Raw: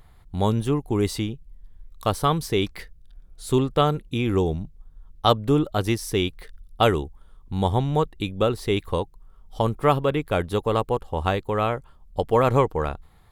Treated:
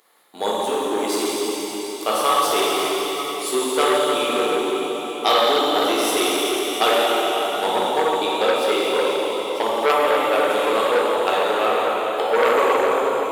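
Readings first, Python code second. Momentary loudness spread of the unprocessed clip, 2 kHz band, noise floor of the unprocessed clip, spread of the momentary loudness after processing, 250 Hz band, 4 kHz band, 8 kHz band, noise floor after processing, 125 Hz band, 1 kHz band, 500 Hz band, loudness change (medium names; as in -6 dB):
11 LU, +10.0 dB, -52 dBFS, 6 LU, -1.0 dB, +10.0 dB, +12.0 dB, -29 dBFS, under -20 dB, +7.0 dB, +5.5 dB, +4.5 dB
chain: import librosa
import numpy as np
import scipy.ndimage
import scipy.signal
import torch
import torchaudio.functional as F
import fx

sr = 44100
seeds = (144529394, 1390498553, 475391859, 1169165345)

y = scipy.signal.sosfilt(scipy.signal.butter(4, 330.0, 'highpass', fs=sr, output='sos'), x)
y = fx.high_shelf(y, sr, hz=3700.0, db=8.5)
y = fx.transient(y, sr, attack_db=3, sustain_db=-4)
y = fx.rev_plate(y, sr, seeds[0], rt60_s=4.6, hf_ratio=1.0, predelay_ms=0, drr_db=-8.0)
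y = fx.transformer_sat(y, sr, knee_hz=1800.0)
y = F.gain(torch.from_numpy(y), -2.5).numpy()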